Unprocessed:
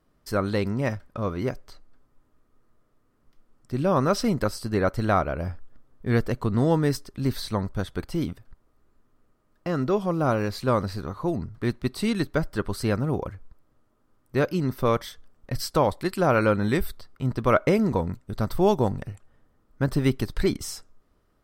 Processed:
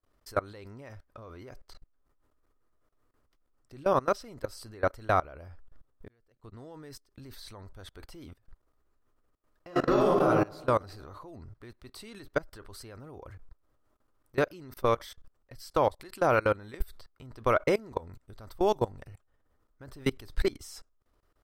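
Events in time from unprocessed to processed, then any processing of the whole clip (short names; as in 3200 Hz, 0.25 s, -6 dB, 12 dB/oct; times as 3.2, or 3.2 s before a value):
6.08–8.3 fade in
9.67–10.25 reverb throw, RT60 1.4 s, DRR -7.5 dB
whole clip: bell 180 Hz -11 dB 1 oct; level quantiser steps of 23 dB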